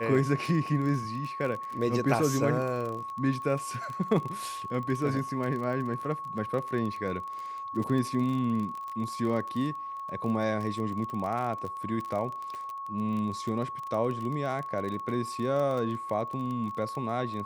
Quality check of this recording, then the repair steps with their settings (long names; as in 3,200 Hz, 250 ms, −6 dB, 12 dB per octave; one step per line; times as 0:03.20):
surface crackle 28 per second −33 dBFS
whistle 1,100 Hz −35 dBFS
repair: click removal
notch filter 1,100 Hz, Q 30